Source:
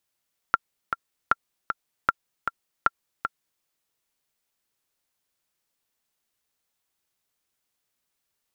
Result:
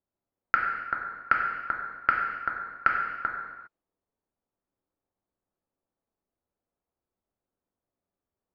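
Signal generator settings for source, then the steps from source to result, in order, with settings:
metronome 155 bpm, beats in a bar 2, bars 4, 1.37 kHz, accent 7 dB -5 dBFS
level-controlled noise filter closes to 680 Hz, open at -27.5 dBFS; gated-style reverb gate 430 ms falling, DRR -1 dB

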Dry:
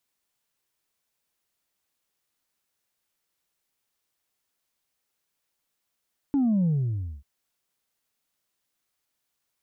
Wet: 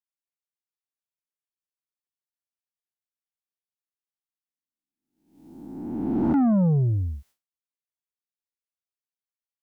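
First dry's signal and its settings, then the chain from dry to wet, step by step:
sub drop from 290 Hz, over 0.89 s, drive 1 dB, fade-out 0.58 s, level -20 dB
reverse spectral sustain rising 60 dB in 1.64 s; expander -53 dBFS; in parallel at -11.5 dB: sine folder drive 9 dB, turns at -15 dBFS

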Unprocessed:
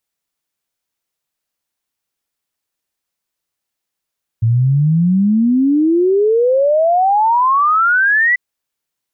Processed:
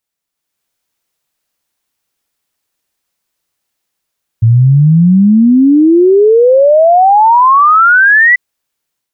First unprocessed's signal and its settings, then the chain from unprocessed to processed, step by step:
log sweep 110 Hz -> 2 kHz 3.94 s -9.5 dBFS
level rider gain up to 8 dB

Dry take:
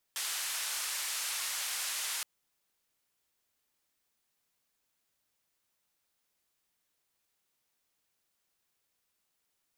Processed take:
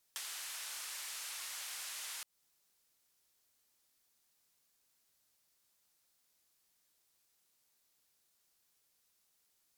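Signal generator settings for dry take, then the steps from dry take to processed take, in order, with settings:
noise band 1.1–11 kHz, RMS -36 dBFS 2.07 s
band noise 3.8–17 kHz -79 dBFS; compression 6:1, threshold -42 dBFS

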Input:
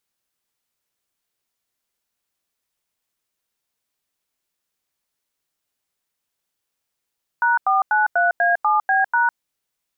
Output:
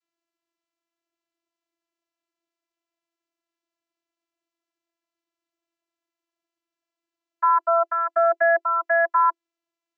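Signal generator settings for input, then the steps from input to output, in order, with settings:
DTMF "#493A7B#", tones 155 ms, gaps 90 ms, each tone -17 dBFS
vocoder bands 32, saw 336 Hz

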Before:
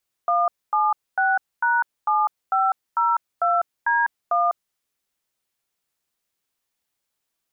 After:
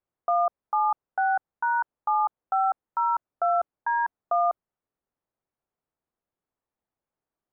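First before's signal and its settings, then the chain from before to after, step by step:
DTMF "176#7502D1", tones 200 ms, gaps 248 ms, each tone -19.5 dBFS
low-pass 1 kHz 12 dB/octave

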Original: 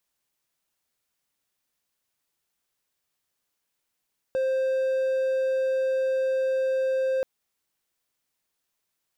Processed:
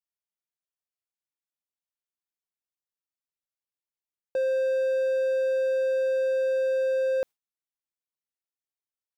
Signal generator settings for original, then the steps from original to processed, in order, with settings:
tone triangle 526 Hz -20 dBFS 2.88 s
gate with hold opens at -21 dBFS

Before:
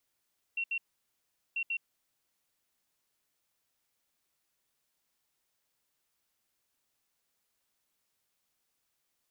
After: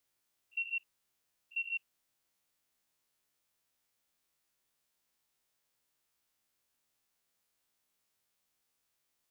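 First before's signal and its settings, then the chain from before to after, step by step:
beep pattern sine 2.73 kHz, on 0.07 s, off 0.07 s, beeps 2, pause 0.78 s, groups 2, -30 dBFS
spectrogram pixelated in time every 50 ms

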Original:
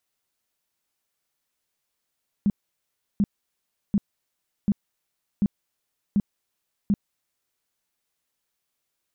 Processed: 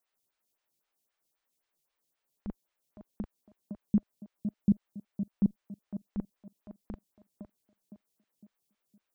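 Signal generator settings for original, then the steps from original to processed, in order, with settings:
tone bursts 203 Hz, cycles 8, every 0.74 s, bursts 7, -16.5 dBFS
on a send: tape echo 509 ms, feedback 38%, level -6.5 dB, low-pass 1 kHz; on the sum: lamp-driven phase shifter 3.8 Hz

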